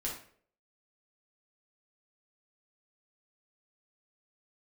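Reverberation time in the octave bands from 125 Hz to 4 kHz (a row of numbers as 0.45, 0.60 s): 0.55, 0.55, 0.65, 0.45, 0.45, 0.40 s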